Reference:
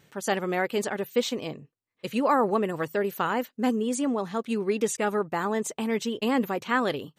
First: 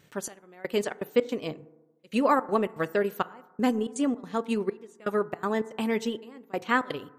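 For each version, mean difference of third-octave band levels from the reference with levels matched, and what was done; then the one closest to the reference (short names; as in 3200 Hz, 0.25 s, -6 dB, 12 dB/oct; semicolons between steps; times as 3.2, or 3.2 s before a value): 6.5 dB: notch 830 Hz, Q 19; transient shaper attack +2 dB, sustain -6 dB; step gate "xxx....xxx.xx.xx" 163 bpm -24 dB; FDN reverb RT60 1.1 s, low-frequency decay 0.95×, high-frequency decay 0.3×, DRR 16.5 dB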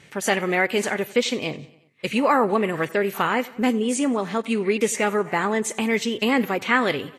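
3.5 dB: feedback echo 91 ms, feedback 58%, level -22.5 dB; in parallel at -1 dB: compressor 6:1, threshold -34 dBFS, peak gain reduction 15 dB; on the sum: bell 2200 Hz +8 dB 0.62 oct; gain +2 dB; Vorbis 32 kbps 32000 Hz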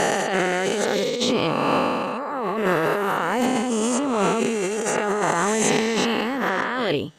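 10.5 dB: spectral swells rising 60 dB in 2.52 s; LPF 8100 Hz 12 dB/oct; negative-ratio compressor -27 dBFS, ratio -1; gain +4.5 dB; Opus 96 kbps 48000 Hz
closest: second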